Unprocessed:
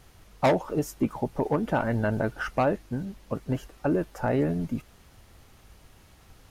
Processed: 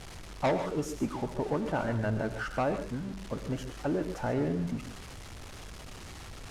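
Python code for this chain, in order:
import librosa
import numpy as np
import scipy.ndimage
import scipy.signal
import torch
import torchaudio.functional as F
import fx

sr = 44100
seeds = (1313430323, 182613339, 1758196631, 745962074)

y = x + 0.5 * 10.0 ** (-33.5 / 20.0) * np.sign(x)
y = scipy.signal.sosfilt(scipy.signal.butter(2, 8500.0, 'lowpass', fs=sr, output='sos'), y)
y = fx.rev_gated(y, sr, seeds[0], gate_ms=170, shape='rising', drr_db=8.5)
y = y * librosa.db_to_amplitude(-6.5)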